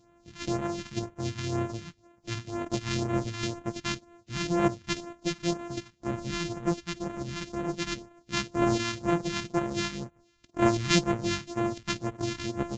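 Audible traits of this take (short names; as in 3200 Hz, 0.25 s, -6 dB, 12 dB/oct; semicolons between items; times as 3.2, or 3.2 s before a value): a buzz of ramps at a fixed pitch in blocks of 128 samples; phasing stages 2, 2 Hz, lowest notch 510–4700 Hz; Vorbis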